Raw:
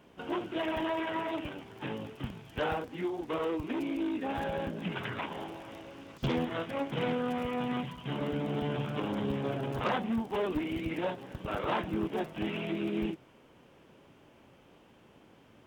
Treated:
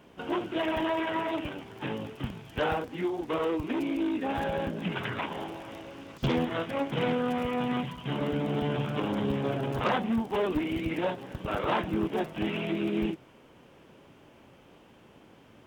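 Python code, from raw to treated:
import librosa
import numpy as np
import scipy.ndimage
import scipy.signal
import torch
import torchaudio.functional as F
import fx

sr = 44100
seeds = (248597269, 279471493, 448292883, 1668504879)

y = F.gain(torch.from_numpy(x), 3.5).numpy()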